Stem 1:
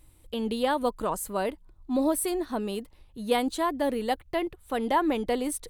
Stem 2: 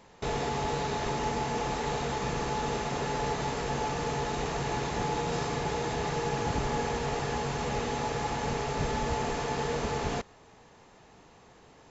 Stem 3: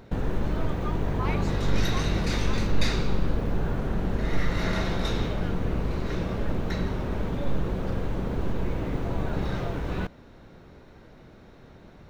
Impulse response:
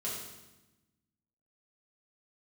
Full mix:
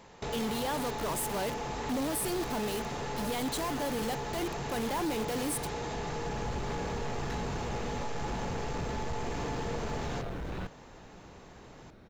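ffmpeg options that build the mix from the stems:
-filter_complex "[0:a]highshelf=f=2.7k:g=6,alimiter=limit=-21.5dB:level=0:latency=1:release=15,acrusher=bits=5:mix=0:aa=0.000001,volume=-1dB,asplit=3[a][b][c];[b]volume=-22dB[d];[1:a]acompressor=threshold=-39dB:ratio=2,volume=2dB[e];[2:a]asoftclip=type=hard:threshold=-28.5dB,adelay=600,volume=-4.5dB[f];[c]apad=whole_len=559759[g];[f][g]sidechaincompress=threshold=-39dB:ratio=8:attack=16:release=1040[h];[3:a]atrim=start_sample=2205[i];[d][i]afir=irnorm=-1:irlink=0[j];[a][e][h][j]amix=inputs=4:normalize=0,asoftclip=type=tanh:threshold=-27.5dB"

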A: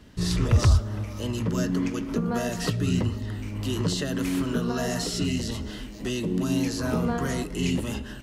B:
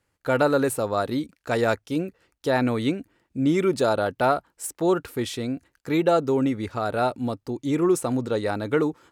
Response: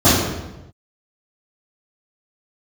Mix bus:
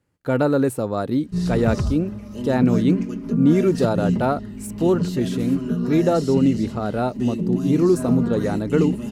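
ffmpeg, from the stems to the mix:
-filter_complex "[0:a]bandreject=f=3.4k:w=16,aecho=1:1:4.9:0.59,adelay=1150,volume=-9.5dB[a];[1:a]volume=-4.5dB[b];[a][b]amix=inputs=2:normalize=0,equalizer=f=180:t=o:w=2.7:g=12"

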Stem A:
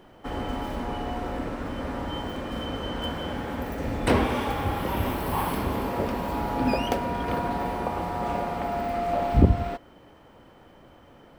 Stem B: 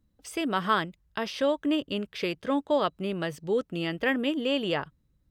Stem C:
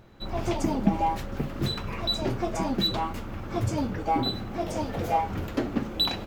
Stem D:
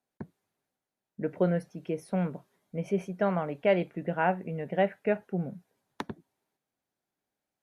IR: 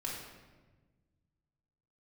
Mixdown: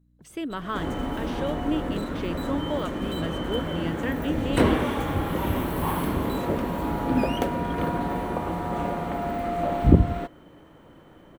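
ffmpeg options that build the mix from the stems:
-filter_complex "[0:a]adelay=500,volume=0.5dB[a];[1:a]deesser=0.85,volume=-5dB[b];[2:a]asoftclip=type=hard:threshold=-36.5dB,adelay=300,volume=-5.5dB[c];[3:a]aeval=exprs='val(0)+0.00562*(sin(2*PI*60*n/s)+sin(2*PI*2*60*n/s)/2+sin(2*PI*3*60*n/s)/3+sin(2*PI*4*60*n/s)/4+sin(2*PI*5*60*n/s)/5)':c=same,volume=-16.5dB[d];[a][b][c][d]amix=inputs=4:normalize=0,equalizer=f=160:t=o:w=0.33:g=6,equalizer=f=315:t=o:w=0.33:g=5,equalizer=f=800:t=o:w=0.33:g=-4,equalizer=f=2.5k:t=o:w=0.33:g=-3,equalizer=f=5k:t=o:w=0.33:g=-9"

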